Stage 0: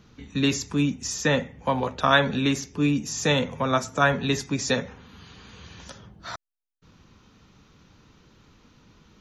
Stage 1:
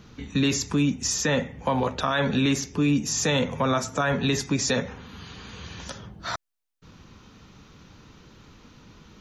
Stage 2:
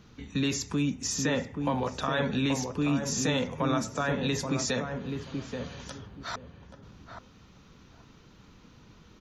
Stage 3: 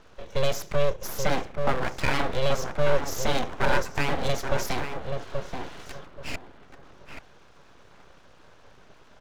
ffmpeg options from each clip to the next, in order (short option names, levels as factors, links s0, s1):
-filter_complex "[0:a]asplit=2[s0][s1];[s1]acompressor=threshold=0.0398:ratio=6,volume=0.841[s2];[s0][s2]amix=inputs=2:normalize=0,alimiter=limit=0.2:level=0:latency=1:release=37"
-filter_complex "[0:a]asplit=2[s0][s1];[s1]adelay=830,lowpass=f=810:p=1,volume=0.631,asplit=2[s2][s3];[s3]adelay=830,lowpass=f=810:p=1,volume=0.23,asplit=2[s4][s5];[s5]adelay=830,lowpass=f=810:p=1,volume=0.23[s6];[s0][s2][s4][s6]amix=inputs=4:normalize=0,volume=0.531"
-af "highpass=120,equalizer=f=200:t=q:w=4:g=-4,equalizer=f=290:t=q:w=4:g=8,equalizer=f=1200:t=q:w=4:g=8,equalizer=f=2200:t=q:w=4:g=-8,equalizer=f=4400:t=q:w=4:g=-7,lowpass=f=6100:w=0.5412,lowpass=f=6100:w=1.3066,aeval=exprs='abs(val(0))':c=same,volume=1.5"